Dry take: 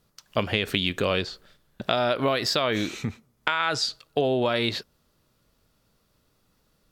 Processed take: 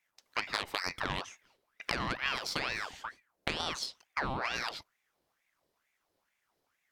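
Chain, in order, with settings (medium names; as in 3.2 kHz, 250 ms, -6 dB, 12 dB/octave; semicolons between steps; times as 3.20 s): Chebyshev shaper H 2 -13 dB, 7 -25 dB, 8 -26 dB, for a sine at -4 dBFS; ring modulator with a swept carrier 1.3 kHz, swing 70%, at 2.2 Hz; trim -5 dB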